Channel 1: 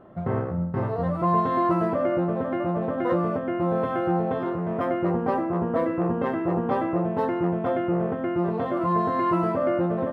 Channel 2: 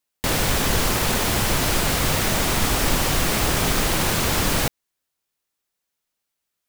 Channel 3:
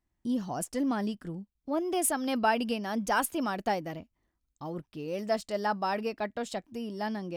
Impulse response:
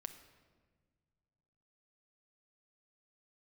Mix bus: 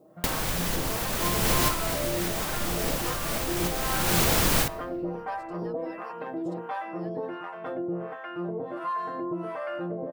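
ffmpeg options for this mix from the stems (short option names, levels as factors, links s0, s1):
-filter_complex "[0:a]acrossover=split=700[s0][s1];[s0]aeval=exprs='val(0)*(1-1/2+1/2*cos(2*PI*1.4*n/s))':c=same[s2];[s1]aeval=exprs='val(0)*(1-1/2-1/2*cos(2*PI*1.4*n/s))':c=same[s3];[s2][s3]amix=inputs=2:normalize=0,highpass=f=530:p=1,volume=0.891,asplit=2[s4][s5];[s5]volume=0.299[s6];[1:a]highshelf=f=12000:g=6,alimiter=limit=0.299:level=0:latency=1:release=175,volume=0.631,asplit=2[s7][s8];[s8]volume=0.596[s9];[2:a]volume=0.119,asplit=2[s10][s11];[s11]apad=whole_len=294783[s12];[s7][s12]sidechaincompress=threshold=0.00112:ratio=8:attack=9:release=308[s13];[s4][s10]amix=inputs=2:normalize=0,aecho=1:1:6.4:0.74,alimiter=level_in=1.12:limit=0.0631:level=0:latency=1:release=229,volume=0.891,volume=1[s14];[3:a]atrim=start_sample=2205[s15];[s6][s9]amix=inputs=2:normalize=0[s16];[s16][s15]afir=irnorm=-1:irlink=0[s17];[s13][s14][s17]amix=inputs=3:normalize=0"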